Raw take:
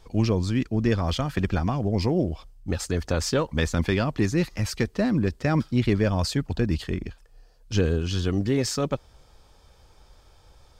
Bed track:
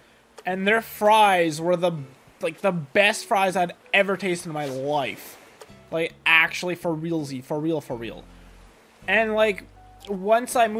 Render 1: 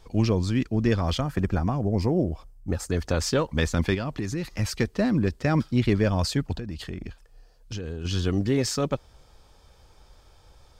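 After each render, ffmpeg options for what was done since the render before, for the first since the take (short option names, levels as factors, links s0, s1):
-filter_complex "[0:a]asettb=1/sr,asplit=3[s0][s1][s2];[s0]atrim=end=1.204[s3];[s1]atrim=start=1.2:end=2.92,asetpts=PTS-STARTPTS,afade=t=in:d=0.004:c=qsin,afade=t=out:st=1.716:d=0.004:c=qsin,equalizer=f=3400:t=o:w=1.5:g=-9.5[s4];[s2]atrim=start=2.916[s5];[s3][s4]acrossfade=d=0.004:c1=hsin:c2=qsin[s6];[s6][s5]acrossfade=d=0.004:c1=qsin:c2=hsin,asettb=1/sr,asplit=3[s7][s8][s9];[s7]atrim=end=3.944[s10];[s8]atrim=start=3.94:end=4.45,asetpts=PTS-STARTPTS,afade=t=in:d=0.004:c=qsin,afade=t=out:st=0.506:d=0.004:c=qsin,acompressor=threshold=0.0562:ratio=6:attack=3.2:release=140:knee=1:detection=peak[s11];[s9]atrim=start=4.446[s12];[s10][s11]acrossfade=d=0.004:c1=hsin:c2=qsin[s13];[s13][s12]acrossfade=d=0.004:c1=qsin:c2=hsin,asettb=1/sr,asplit=3[s14][s15][s16];[s14]atrim=end=6.564[s17];[s15]atrim=start=6.56:end=8.05,asetpts=PTS-STARTPTS,afade=t=in:d=0.004:c=qsin,afade=t=out:st=1.486:d=0.004:c=qsin,acompressor=threshold=0.0355:ratio=16:attack=3.2:release=140:knee=1:detection=peak[s18];[s16]atrim=start=8.046[s19];[s17][s18]acrossfade=d=0.004:c1=hsin:c2=qsin[s20];[s20][s19]acrossfade=d=0.004:c1=qsin:c2=hsin"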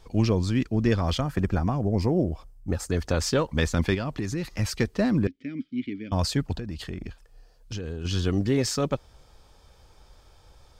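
-filter_complex "[0:a]asettb=1/sr,asplit=3[s0][s1][s2];[s0]atrim=end=5.274[s3];[s1]atrim=start=5.27:end=6.12,asetpts=PTS-STARTPTS,afade=t=in:d=0.004:c=qsin,afade=t=out:st=0.846:d=0.004:c=qsin,asplit=3[s4][s5][s6];[s4]bandpass=f=270:t=q:w=8,volume=1[s7];[s5]bandpass=f=2290:t=q:w=8,volume=0.501[s8];[s6]bandpass=f=3010:t=q:w=8,volume=0.355[s9];[s7][s8][s9]amix=inputs=3:normalize=0[s10];[s2]atrim=start=6.116[s11];[s3][s10]acrossfade=d=0.004:c1=hsin:c2=qsin[s12];[s12][s11]acrossfade=d=0.004:c1=qsin:c2=hsin"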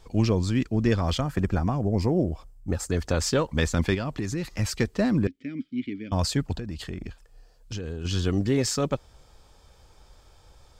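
-af "equalizer=f=7500:w=5.4:g=4.5"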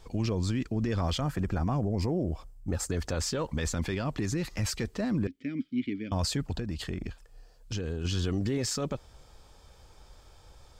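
-af "alimiter=limit=0.0794:level=0:latency=1:release=39"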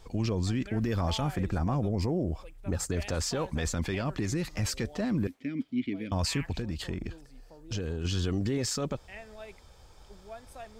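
-filter_complex "[1:a]volume=0.0501[s0];[0:a][s0]amix=inputs=2:normalize=0"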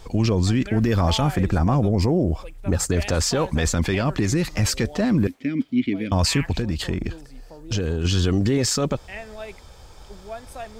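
-af "volume=2.99"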